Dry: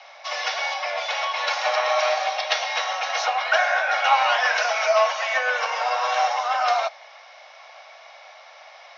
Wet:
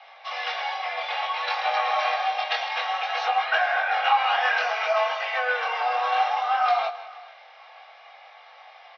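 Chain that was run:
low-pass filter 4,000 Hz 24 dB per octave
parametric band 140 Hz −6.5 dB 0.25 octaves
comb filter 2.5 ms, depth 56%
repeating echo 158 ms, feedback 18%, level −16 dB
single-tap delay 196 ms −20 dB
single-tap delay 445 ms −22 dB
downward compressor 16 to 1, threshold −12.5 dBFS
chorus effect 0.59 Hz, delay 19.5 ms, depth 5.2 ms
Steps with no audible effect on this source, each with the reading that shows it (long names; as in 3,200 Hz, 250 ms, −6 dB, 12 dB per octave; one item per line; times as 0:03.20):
parametric band 140 Hz: nothing at its input below 450 Hz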